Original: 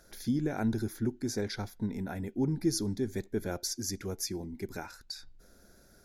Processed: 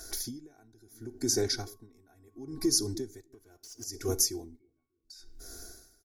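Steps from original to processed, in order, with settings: resonant high shelf 4.1 kHz +8.5 dB, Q 1.5; 3.28–3.84 s: waveshaping leveller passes 3; comb 2.7 ms, depth 84%; 1.60–2.70 s: whistle 1.1 kHz -57 dBFS; 4.59–5.05 s: pitch-class resonator C#, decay 0.36 s; bucket-brigade echo 295 ms, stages 1024, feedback 40%, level -16.5 dB; compression 4:1, threshold -32 dBFS, peak gain reduction 16 dB; on a send at -19 dB: reverberation RT60 0.50 s, pre-delay 34 ms; on the sum: logarithmic tremolo 0.72 Hz, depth 33 dB; trim +7.5 dB

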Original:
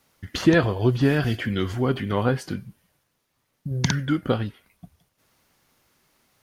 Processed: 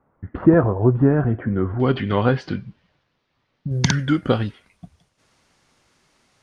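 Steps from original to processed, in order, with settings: low-pass 1.3 kHz 24 dB/octave, from 1.80 s 4.5 kHz, from 3.71 s 8.8 kHz; trim +4 dB

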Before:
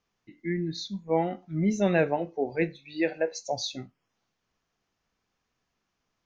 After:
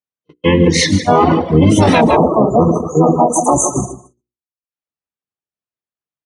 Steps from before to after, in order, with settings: gated-style reverb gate 420 ms falling, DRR 4.5 dB; harmony voices -12 st 0 dB, +4 st -6 dB, +7 st -1 dB; gate -37 dBFS, range -42 dB; spectral selection erased 2.01–4.71 s, 1.3–6 kHz; hum notches 60/120/180/240/300/360/420/480 Hz; on a send: delay 154 ms -11 dB; on the sum: reverb removal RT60 0.6 s; high-pass 73 Hz; loudness maximiser +19.5 dB; trim -1 dB

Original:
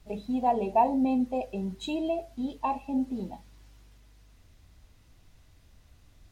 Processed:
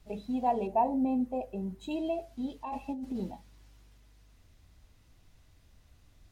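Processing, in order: 0.67–1.91 s: peaking EQ 4.3 kHz -9.5 dB 2.3 oct; 2.63–3.32 s: compressor with a negative ratio -32 dBFS, ratio -1; trim -3 dB

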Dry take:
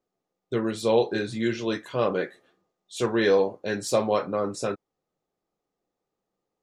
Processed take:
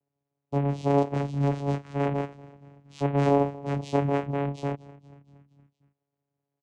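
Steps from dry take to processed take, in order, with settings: frequency-shifting echo 234 ms, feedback 60%, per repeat -77 Hz, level -21 dB; vocoder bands 4, saw 141 Hz

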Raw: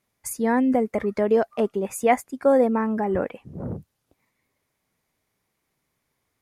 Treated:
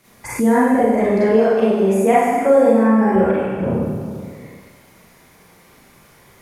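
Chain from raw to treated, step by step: Schroeder reverb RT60 1.2 s, combs from 32 ms, DRR -10 dB; three bands compressed up and down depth 70%; trim -3 dB

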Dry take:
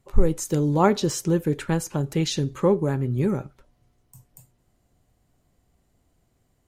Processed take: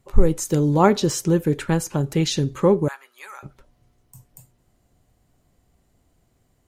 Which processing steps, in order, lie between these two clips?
2.88–3.43 s: high-pass 1 kHz 24 dB/octave; trim +3 dB

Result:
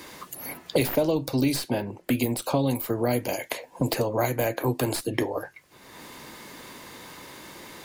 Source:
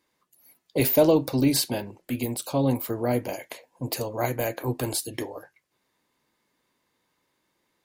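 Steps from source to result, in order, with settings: tracing distortion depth 0.02 ms; three bands compressed up and down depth 100%

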